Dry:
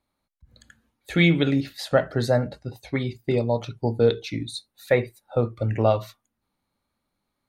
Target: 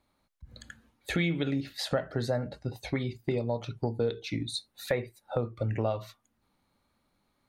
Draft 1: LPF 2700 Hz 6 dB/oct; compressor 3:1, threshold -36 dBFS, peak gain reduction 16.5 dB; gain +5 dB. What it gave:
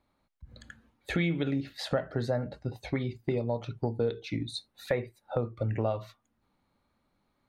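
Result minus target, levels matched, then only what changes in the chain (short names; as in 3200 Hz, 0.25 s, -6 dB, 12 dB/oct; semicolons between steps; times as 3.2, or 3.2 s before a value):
8000 Hz band -6.0 dB
change: LPF 8600 Hz 6 dB/oct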